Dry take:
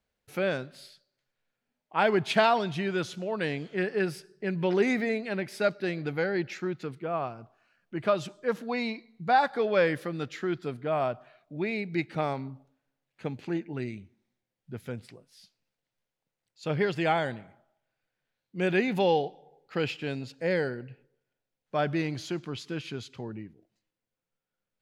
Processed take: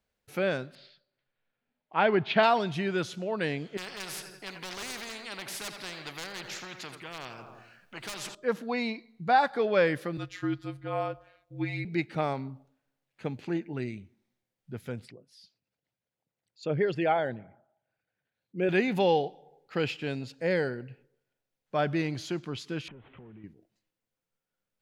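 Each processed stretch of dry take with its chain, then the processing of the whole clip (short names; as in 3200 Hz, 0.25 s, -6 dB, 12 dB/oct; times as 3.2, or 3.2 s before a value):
0.75–2.43 block floating point 7-bit + LPF 3900 Hz 24 dB/oct
3.77–8.35 hard clip -22 dBFS + feedback echo 85 ms, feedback 51%, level -17 dB + spectral compressor 4:1
10.17–11.85 robotiser 185 Hz + frequency shift -49 Hz
15.05–18.69 formant sharpening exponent 1.5 + HPF 55 Hz
22.88–23.44 delta modulation 16 kbps, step -52.5 dBFS + compressor 10:1, threshold -45 dBFS
whole clip: dry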